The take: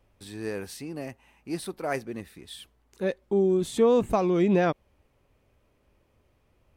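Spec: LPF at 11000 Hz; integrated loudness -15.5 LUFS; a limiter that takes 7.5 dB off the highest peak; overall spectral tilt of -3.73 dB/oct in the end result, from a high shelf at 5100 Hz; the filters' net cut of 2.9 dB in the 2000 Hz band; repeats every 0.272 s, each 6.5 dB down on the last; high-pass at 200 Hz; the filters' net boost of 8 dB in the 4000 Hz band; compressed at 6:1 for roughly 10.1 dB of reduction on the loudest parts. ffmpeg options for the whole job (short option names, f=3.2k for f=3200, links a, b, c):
-af "highpass=200,lowpass=11k,equalizer=f=2k:t=o:g=-7,equalizer=f=4k:t=o:g=8,highshelf=f=5.1k:g=8,acompressor=threshold=-28dB:ratio=6,alimiter=level_in=0.5dB:limit=-24dB:level=0:latency=1,volume=-0.5dB,aecho=1:1:272|544|816|1088|1360|1632:0.473|0.222|0.105|0.0491|0.0231|0.0109,volume=19dB"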